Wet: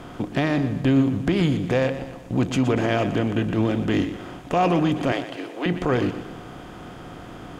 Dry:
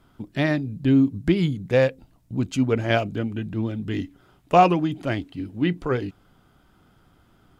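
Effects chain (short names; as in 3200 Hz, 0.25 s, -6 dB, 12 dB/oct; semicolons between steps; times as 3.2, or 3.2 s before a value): per-bin compression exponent 0.6; 5.12–5.66 HPF 390 Hz 24 dB/oct; limiter -11.5 dBFS, peak gain reduction 9 dB; warbling echo 0.121 s, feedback 47%, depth 61 cents, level -12 dB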